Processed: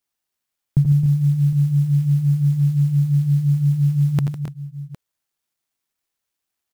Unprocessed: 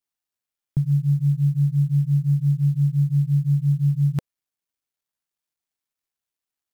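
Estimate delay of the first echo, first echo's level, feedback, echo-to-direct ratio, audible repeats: 81 ms, -11.0 dB, no regular repeats, -4.5 dB, 4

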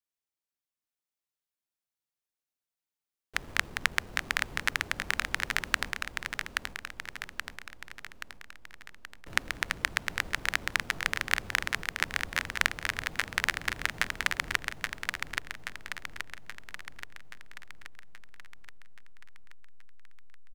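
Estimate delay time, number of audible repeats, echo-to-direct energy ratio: 827 ms, 7, -3.0 dB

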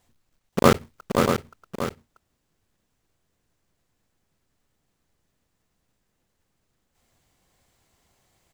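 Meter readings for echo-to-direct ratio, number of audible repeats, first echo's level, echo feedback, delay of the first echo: -2.5 dB, 3, -5.0 dB, no regular repeats, 526 ms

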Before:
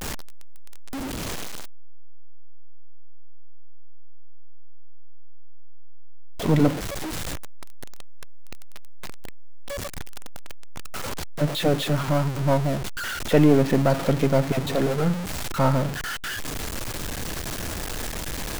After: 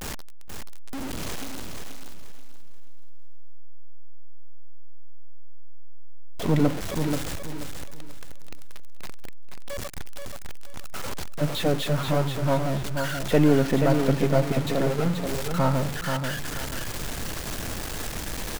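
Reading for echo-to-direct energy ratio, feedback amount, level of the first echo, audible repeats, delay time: -5.5 dB, 28%, -6.0 dB, 3, 481 ms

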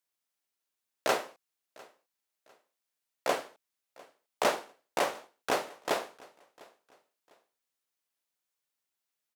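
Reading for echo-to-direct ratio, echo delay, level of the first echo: -23.5 dB, 701 ms, -24.0 dB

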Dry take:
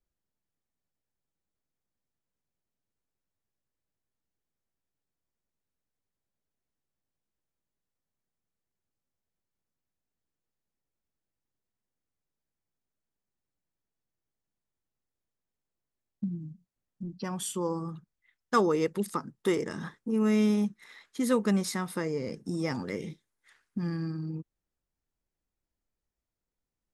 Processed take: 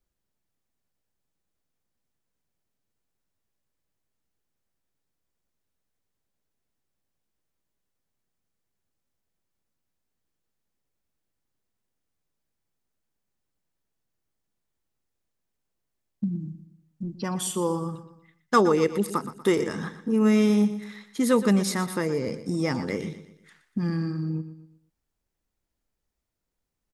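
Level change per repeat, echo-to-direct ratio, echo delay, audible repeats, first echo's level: -8.0 dB, -12.0 dB, 120 ms, 3, -13.0 dB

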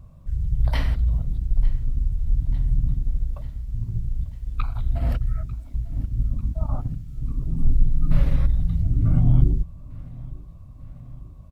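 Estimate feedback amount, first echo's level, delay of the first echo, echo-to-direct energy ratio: 59%, -21.0 dB, 895 ms, -19.0 dB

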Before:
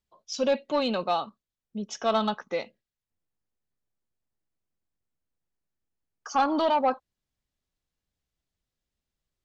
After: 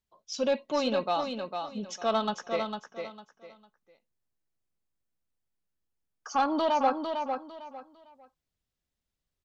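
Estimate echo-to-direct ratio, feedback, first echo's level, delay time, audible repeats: -5.5 dB, 25%, -6.0 dB, 452 ms, 3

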